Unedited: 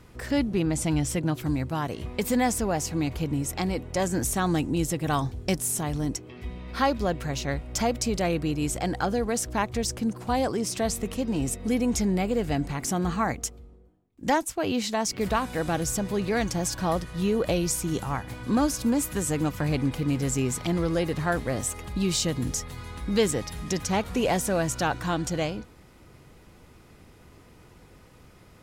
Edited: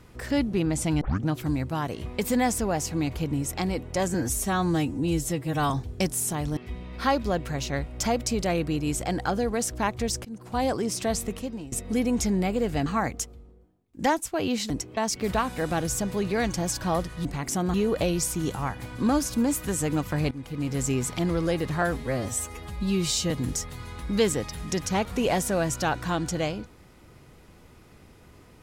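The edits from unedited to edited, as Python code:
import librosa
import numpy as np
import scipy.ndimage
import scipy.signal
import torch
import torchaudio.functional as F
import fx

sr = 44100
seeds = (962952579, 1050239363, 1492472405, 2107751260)

y = fx.edit(x, sr, fx.tape_start(start_s=1.01, length_s=0.26),
    fx.stretch_span(start_s=4.14, length_s=1.04, factor=1.5),
    fx.move(start_s=6.05, length_s=0.27, to_s=14.94),
    fx.fade_in_from(start_s=10.0, length_s=0.39, floor_db=-19.5),
    fx.fade_out_to(start_s=10.99, length_s=0.48, floor_db=-19.0),
    fx.move(start_s=12.61, length_s=0.49, to_s=17.22),
    fx.fade_in_from(start_s=19.79, length_s=0.53, floor_db=-16.5),
    fx.stretch_span(start_s=21.3, length_s=0.99, factor=1.5), tone=tone)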